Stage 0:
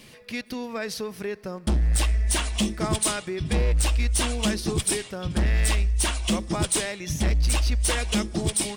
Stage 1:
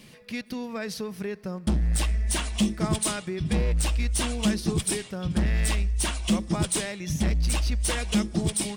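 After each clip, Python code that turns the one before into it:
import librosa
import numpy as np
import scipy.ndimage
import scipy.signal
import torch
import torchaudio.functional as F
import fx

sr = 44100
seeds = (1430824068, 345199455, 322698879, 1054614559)

y = fx.peak_eq(x, sr, hz=180.0, db=7.0, octaves=0.76)
y = F.gain(torch.from_numpy(y), -3.0).numpy()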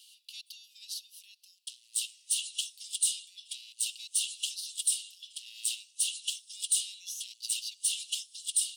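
y = scipy.signal.sosfilt(scipy.signal.cheby1(6, 3, 2800.0, 'highpass', fs=sr, output='sos'), x)
y = F.gain(torch.from_numpy(y), 1.0).numpy()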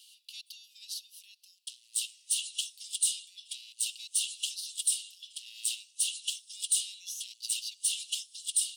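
y = x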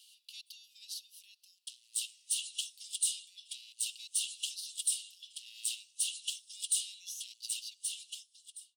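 y = fx.fade_out_tail(x, sr, length_s=1.46)
y = F.gain(torch.from_numpy(y), -3.5).numpy()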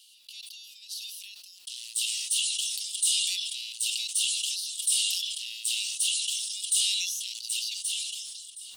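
y = fx.sustainer(x, sr, db_per_s=25.0)
y = F.gain(torch.from_numpy(y), 4.0).numpy()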